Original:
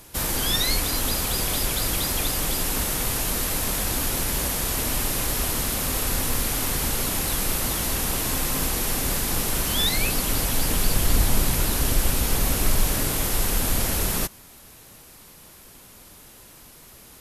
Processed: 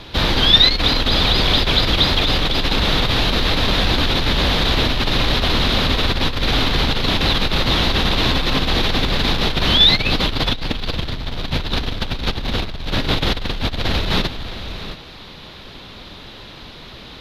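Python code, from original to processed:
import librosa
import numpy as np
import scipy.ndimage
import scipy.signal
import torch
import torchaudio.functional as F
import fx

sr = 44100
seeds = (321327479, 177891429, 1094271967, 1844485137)

p1 = fx.fold_sine(x, sr, drive_db=10, ceiling_db=-7.0)
p2 = fx.air_absorb(p1, sr, metres=300.0)
p3 = p2 + fx.echo_single(p2, sr, ms=673, db=-14.5, dry=0)
p4 = fx.over_compress(p3, sr, threshold_db=-15.0, ratio=-0.5)
p5 = fx.peak_eq(p4, sr, hz=3800.0, db=15.0, octaves=0.78)
y = p5 * 10.0 ** (-3.0 / 20.0)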